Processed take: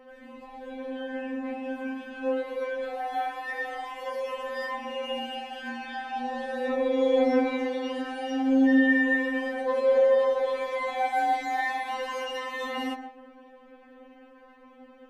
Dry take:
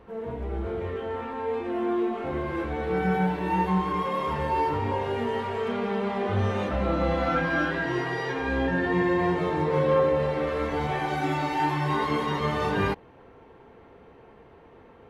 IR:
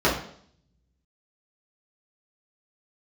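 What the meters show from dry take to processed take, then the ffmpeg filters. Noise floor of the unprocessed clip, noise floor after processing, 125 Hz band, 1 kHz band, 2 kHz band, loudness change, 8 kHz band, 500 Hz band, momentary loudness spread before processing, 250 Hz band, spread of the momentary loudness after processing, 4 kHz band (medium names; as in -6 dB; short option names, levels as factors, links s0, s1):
-52 dBFS, -53 dBFS, under -30 dB, -3.0 dB, +0.5 dB, -1.0 dB, no reading, 0.0 dB, 7 LU, 0.0 dB, 14 LU, +0.5 dB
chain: -filter_complex "[0:a]asplit=2[s0][s1];[1:a]atrim=start_sample=2205,asetrate=52920,aresample=44100,adelay=107[s2];[s1][s2]afir=irnorm=-1:irlink=0,volume=0.0422[s3];[s0][s3]amix=inputs=2:normalize=0,afftfilt=real='re*3.46*eq(mod(b,12),0)':imag='im*3.46*eq(mod(b,12),0)':win_size=2048:overlap=0.75,volume=1.33"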